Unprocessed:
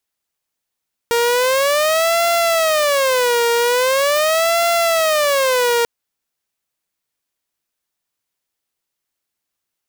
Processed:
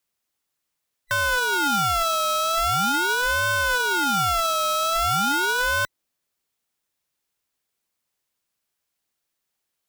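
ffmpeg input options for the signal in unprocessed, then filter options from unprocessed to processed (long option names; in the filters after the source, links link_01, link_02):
-f lavfi -i "aevalsrc='0.282*(2*mod((576*t-107/(2*PI*0.42)*sin(2*PI*0.42*t)),1)-1)':duration=4.74:sample_rate=44100"
-af "afftfilt=real='real(if(between(b,1,1012),(2*floor((b-1)/92)+1)*92-b,b),0)':imag='imag(if(between(b,1,1012),(2*floor((b-1)/92)+1)*92-b,b),0)*if(between(b,1,1012),-1,1)':win_size=2048:overlap=0.75,adynamicequalizer=threshold=0.0126:dfrequency=250:dqfactor=0.82:tfrequency=250:tqfactor=0.82:attack=5:release=100:ratio=0.375:range=2:mode=boostabove:tftype=bell,alimiter=limit=-15dB:level=0:latency=1:release=82"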